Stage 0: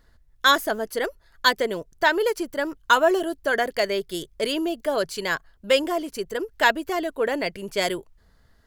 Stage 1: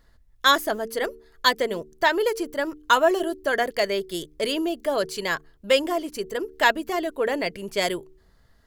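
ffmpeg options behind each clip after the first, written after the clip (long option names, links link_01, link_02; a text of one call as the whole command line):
ffmpeg -i in.wav -af "bandreject=frequency=1500:width=17,bandreject=frequency=75.4:width_type=h:width=4,bandreject=frequency=150.8:width_type=h:width=4,bandreject=frequency=226.2:width_type=h:width=4,bandreject=frequency=301.6:width_type=h:width=4,bandreject=frequency=377:width_type=h:width=4,bandreject=frequency=452.4:width_type=h:width=4" out.wav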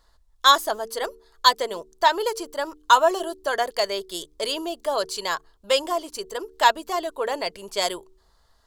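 ffmpeg -i in.wav -af "equalizer=frequency=125:width_type=o:width=1:gain=-10,equalizer=frequency=250:width_type=o:width=1:gain=-6,equalizer=frequency=1000:width_type=o:width=1:gain=9,equalizer=frequency=2000:width_type=o:width=1:gain=-6,equalizer=frequency=4000:width_type=o:width=1:gain=6,equalizer=frequency=8000:width_type=o:width=1:gain=6,volume=-2.5dB" out.wav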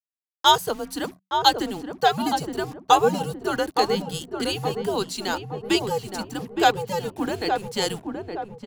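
ffmpeg -i in.wav -filter_complex "[0:a]acrusher=bits=6:mix=0:aa=0.5,afreqshift=-190,asplit=2[link_01][link_02];[link_02]adelay=867,lowpass=frequency=1000:poles=1,volume=-4dB,asplit=2[link_03][link_04];[link_04]adelay=867,lowpass=frequency=1000:poles=1,volume=0.51,asplit=2[link_05][link_06];[link_06]adelay=867,lowpass=frequency=1000:poles=1,volume=0.51,asplit=2[link_07][link_08];[link_08]adelay=867,lowpass=frequency=1000:poles=1,volume=0.51,asplit=2[link_09][link_10];[link_10]adelay=867,lowpass=frequency=1000:poles=1,volume=0.51,asplit=2[link_11][link_12];[link_12]adelay=867,lowpass=frequency=1000:poles=1,volume=0.51,asplit=2[link_13][link_14];[link_14]adelay=867,lowpass=frequency=1000:poles=1,volume=0.51[link_15];[link_01][link_03][link_05][link_07][link_09][link_11][link_13][link_15]amix=inputs=8:normalize=0,volume=-1dB" out.wav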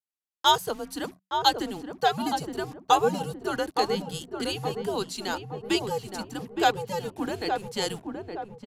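ffmpeg -i in.wav -af "aresample=32000,aresample=44100,volume=-4dB" out.wav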